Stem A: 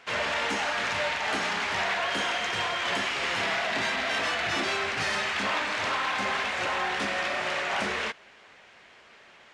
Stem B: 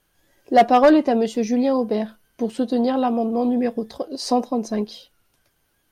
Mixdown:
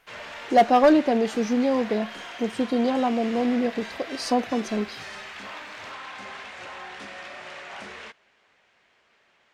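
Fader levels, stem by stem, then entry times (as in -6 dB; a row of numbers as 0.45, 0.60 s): -10.5, -3.0 dB; 0.00, 0.00 s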